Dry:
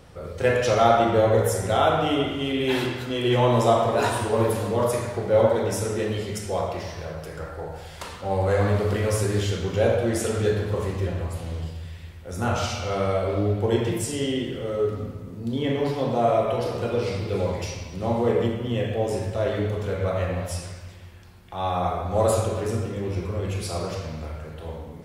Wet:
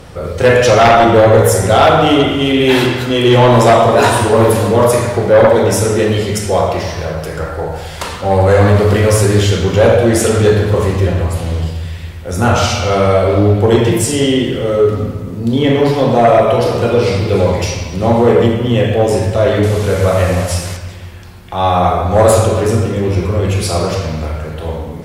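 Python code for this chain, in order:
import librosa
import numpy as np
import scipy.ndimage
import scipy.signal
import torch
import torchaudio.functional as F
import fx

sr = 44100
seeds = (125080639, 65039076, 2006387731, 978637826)

y = fx.delta_mod(x, sr, bps=64000, step_db=-35.0, at=(19.63, 20.77))
y = fx.fold_sine(y, sr, drive_db=8, ceiling_db=-4.5)
y = y * 10.0 ** (2.0 / 20.0)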